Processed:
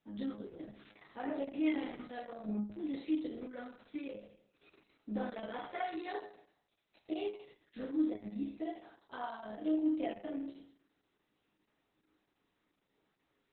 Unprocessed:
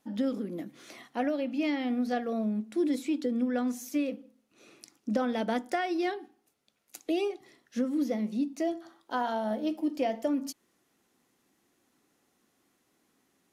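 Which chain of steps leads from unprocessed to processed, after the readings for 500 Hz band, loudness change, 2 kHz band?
-10.0 dB, -8.0 dB, -9.0 dB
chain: chord resonator G#2 sus4, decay 0.66 s; trim +10 dB; Opus 6 kbps 48 kHz

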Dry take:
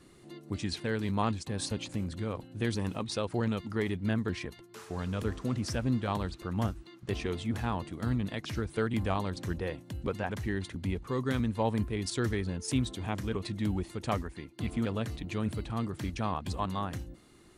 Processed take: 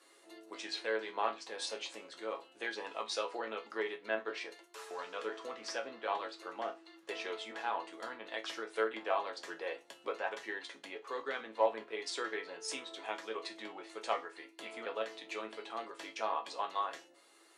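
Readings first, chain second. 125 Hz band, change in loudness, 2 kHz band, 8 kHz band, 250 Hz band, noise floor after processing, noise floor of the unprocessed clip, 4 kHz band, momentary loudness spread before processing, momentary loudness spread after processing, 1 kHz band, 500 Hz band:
under -40 dB, -6.0 dB, 0.0 dB, -5.0 dB, -18.0 dB, -63 dBFS, -56 dBFS, -1.5 dB, 7 LU, 9 LU, -0.5 dB, -2.0 dB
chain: low-pass that closes with the level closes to 3 kHz, closed at -26 dBFS; high-pass 460 Hz 24 dB/octave; chord resonator A2 major, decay 0.23 s; in parallel at -12 dB: overload inside the chain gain 34.5 dB; on the sum: trim +10 dB

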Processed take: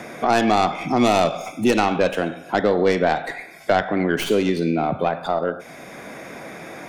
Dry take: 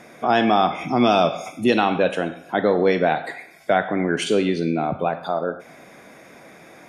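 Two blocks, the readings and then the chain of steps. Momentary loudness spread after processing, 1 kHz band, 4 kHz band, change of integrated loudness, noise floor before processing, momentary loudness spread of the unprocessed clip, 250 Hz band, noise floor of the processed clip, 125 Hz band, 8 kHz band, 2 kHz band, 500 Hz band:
18 LU, 0.0 dB, -0.5 dB, 0.0 dB, -47 dBFS, 9 LU, +0.5 dB, -41 dBFS, +1.0 dB, +4.0 dB, +0.5 dB, +0.5 dB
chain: tracing distortion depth 0.12 ms; three bands compressed up and down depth 40%

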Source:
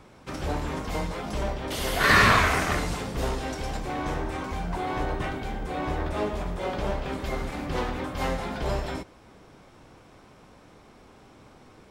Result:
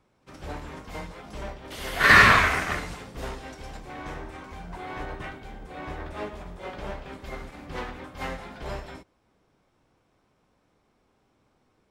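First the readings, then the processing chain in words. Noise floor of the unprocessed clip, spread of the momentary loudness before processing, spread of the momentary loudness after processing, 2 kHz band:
-53 dBFS, 12 LU, 23 LU, +4.0 dB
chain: pre-echo 56 ms -20 dB; dynamic bell 1.9 kHz, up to +6 dB, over -40 dBFS, Q 0.91; upward expansion 1.5:1, over -44 dBFS

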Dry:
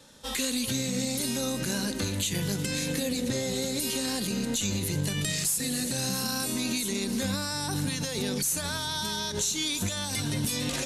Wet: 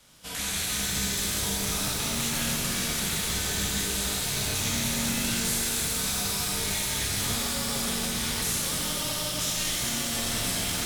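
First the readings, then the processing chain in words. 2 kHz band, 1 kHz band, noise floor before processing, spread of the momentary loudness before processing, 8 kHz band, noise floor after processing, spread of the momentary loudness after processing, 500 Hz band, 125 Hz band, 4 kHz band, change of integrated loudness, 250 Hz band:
+3.5 dB, +2.5 dB, -34 dBFS, 3 LU, +3.5 dB, -31 dBFS, 2 LU, -3.5 dB, -2.0 dB, +3.0 dB, +2.0 dB, -4.0 dB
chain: spectral contrast reduction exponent 0.51; frequency shift -330 Hz; pitch-shifted reverb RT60 3.4 s, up +12 st, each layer -8 dB, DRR -4 dB; trim -4.5 dB

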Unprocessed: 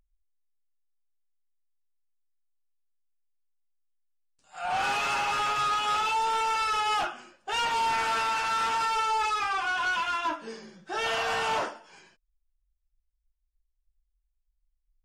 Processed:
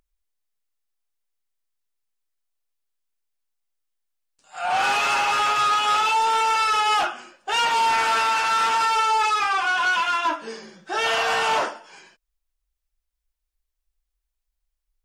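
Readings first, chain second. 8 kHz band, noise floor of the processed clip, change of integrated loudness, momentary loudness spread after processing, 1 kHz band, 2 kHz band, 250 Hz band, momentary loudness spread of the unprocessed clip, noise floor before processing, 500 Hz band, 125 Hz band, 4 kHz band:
+7.0 dB, -81 dBFS, +7.0 dB, 8 LU, +6.5 dB, +7.0 dB, +3.5 dB, 8 LU, -78 dBFS, +5.5 dB, no reading, +7.0 dB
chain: bass shelf 180 Hz -11 dB; trim +7 dB

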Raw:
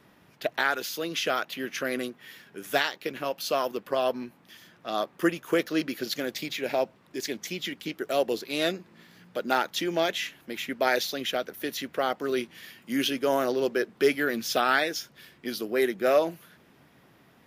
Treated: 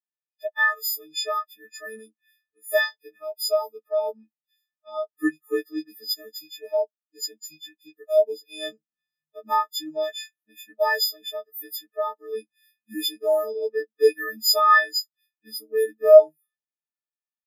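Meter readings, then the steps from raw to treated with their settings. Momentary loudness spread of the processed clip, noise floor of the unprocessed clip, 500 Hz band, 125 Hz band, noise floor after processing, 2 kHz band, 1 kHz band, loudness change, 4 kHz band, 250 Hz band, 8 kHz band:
19 LU, -59 dBFS, +5.5 dB, under -20 dB, under -85 dBFS, +2.5 dB, +3.5 dB, +5.0 dB, +3.0 dB, -5.5 dB, +2.5 dB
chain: partials quantised in pitch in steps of 6 st; dynamic bell 2.8 kHz, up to -7 dB, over -37 dBFS, Q 1.2; spectral contrast expander 2.5:1; trim +7 dB

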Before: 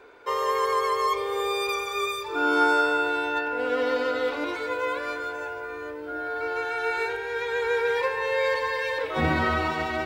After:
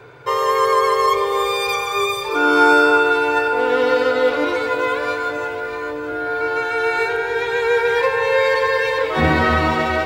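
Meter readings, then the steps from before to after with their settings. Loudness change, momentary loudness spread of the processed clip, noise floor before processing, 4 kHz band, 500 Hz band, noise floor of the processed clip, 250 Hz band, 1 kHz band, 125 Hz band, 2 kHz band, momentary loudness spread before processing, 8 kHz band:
+8.5 dB, 9 LU, -36 dBFS, +8.0 dB, +9.0 dB, -26 dBFS, +8.0 dB, +8.5 dB, +8.5 dB, +8.0 dB, 8 LU, +8.0 dB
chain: echo whose repeats swap between lows and highs 311 ms, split 1.5 kHz, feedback 67%, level -7.5 dB; band noise 93–150 Hz -58 dBFS; trim +7.5 dB

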